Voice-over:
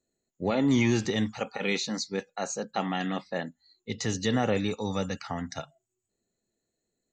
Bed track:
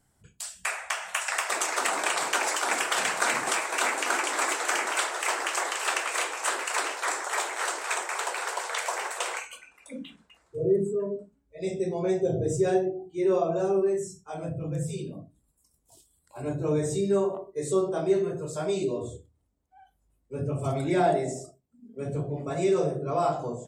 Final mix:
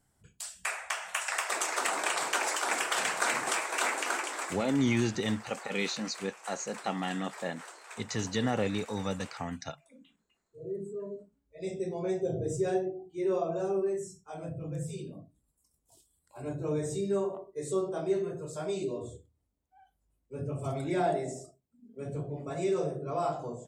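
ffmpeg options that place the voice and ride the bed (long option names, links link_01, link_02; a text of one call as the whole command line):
ffmpeg -i stem1.wav -i stem2.wav -filter_complex "[0:a]adelay=4100,volume=-3.5dB[link_01];[1:a]volume=9dB,afade=type=out:start_time=3.96:duration=0.73:silence=0.188365,afade=type=in:start_time=10.55:duration=0.89:silence=0.237137[link_02];[link_01][link_02]amix=inputs=2:normalize=0" out.wav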